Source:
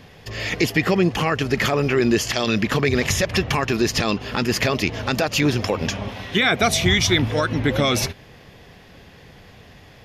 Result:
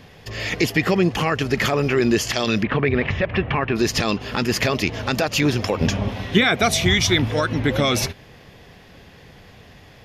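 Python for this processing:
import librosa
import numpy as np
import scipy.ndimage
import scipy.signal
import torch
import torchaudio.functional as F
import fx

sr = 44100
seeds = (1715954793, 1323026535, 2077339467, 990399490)

y = fx.lowpass(x, sr, hz=2800.0, slope=24, at=(2.62, 3.75), fade=0.02)
y = fx.low_shelf(y, sr, hz=490.0, db=7.0, at=(5.8, 6.44))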